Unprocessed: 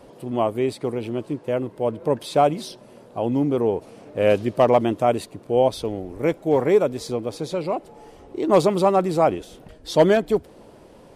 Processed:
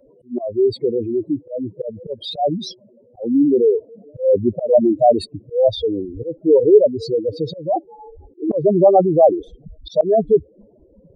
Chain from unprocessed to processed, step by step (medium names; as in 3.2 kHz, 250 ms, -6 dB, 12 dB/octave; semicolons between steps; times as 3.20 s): spectral contrast enhancement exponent 3.6; slow attack 204 ms; spectral noise reduction 12 dB; trim +7.5 dB